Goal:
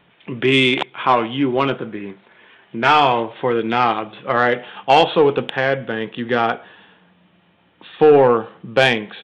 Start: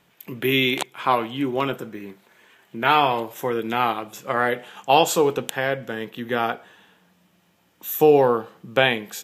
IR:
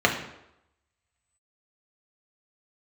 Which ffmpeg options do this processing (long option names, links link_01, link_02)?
-af "aresample=8000,aresample=44100,acontrast=87,volume=-1dB"